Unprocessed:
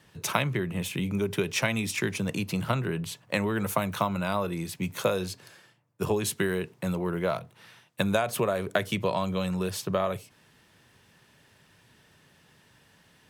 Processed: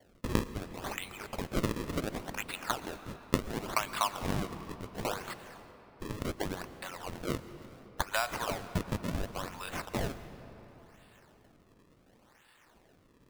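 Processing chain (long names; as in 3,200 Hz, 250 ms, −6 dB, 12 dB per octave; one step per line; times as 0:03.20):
high-pass filter 810 Hz 24 dB per octave
high-shelf EQ 10,000 Hz −9.5 dB
sample-and-hold swept by an LFO 34×, swing 160% 0.7 Hz
on a send: convolution reverb RT60 3.8 s, pre-delay 110 ms, DRR 12 dB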